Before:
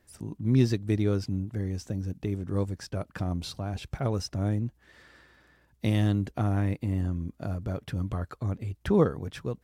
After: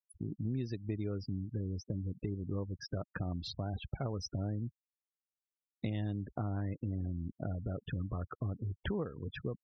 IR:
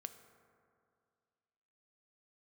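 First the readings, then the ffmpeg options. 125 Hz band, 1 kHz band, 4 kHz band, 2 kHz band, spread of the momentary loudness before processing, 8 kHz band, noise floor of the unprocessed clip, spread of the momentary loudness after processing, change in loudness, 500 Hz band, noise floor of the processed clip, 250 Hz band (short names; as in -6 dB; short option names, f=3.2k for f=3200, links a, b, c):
-9.0 dB, -9.5 dB, -6.5 dB, -7.5 dB, 11 LU, -11.5 dB, -66 dBFS, 3 LU, -9.5 dB, -11.0 dB, under -85 dBFS, -10.0 dB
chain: -af "agate=range=-33dB:threshold=-51dB:ratio=3:detection=peak,afftfilt=real='re*gte(hypot(re,im),0.0178)':imag='im*gte(hypot(re,im),0.0178)':win_size=1024:overlap=0.75,acompressor=threshold=-34dB:ratio=6"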